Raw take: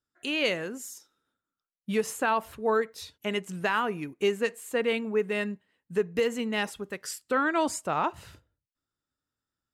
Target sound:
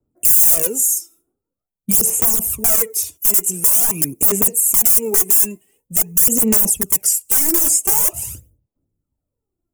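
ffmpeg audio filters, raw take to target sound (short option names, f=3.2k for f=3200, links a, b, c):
-filter_complex "[0:a]acrossover=split=150|380|3700[a][b][c][d];[a]acompressor=threshold=-53dB:ratio=4[e];[b]acompressor=threshold=-39dB:ratio=4[f];[c]acompressor=threshold=-26dB:ratio=4[g];[d]acompressor=threshold=-44dB:ratio=4[h];[e][f][g][h]amix=inputs=4:normalize=0,highshelf=f=2k:t=q:w=3:g=7,acrossover=split=1000[i][j];[i]acontrast=38[k];[j]agate=range=-33dB:threshold=-59dB:ratio=3:detection=peak[l];[k][l]amix=inputs=2:normalize=0,aeval=exprs='(mod(14.1*val(0)+1,2)-1)/14.1':c=same,tiltshelf=f=1.2k:g=7,aphaser=in_gain=1:out_gain=1:delay=3:decay=0.66:speed=0.46:type=sinusoidal,aexciter=amount=13.5:drive=9.6:freq=6.4k,alimiter=level_in=1dB:limit=-1dB:release=50:level=0:latency=1,volume=-1dB"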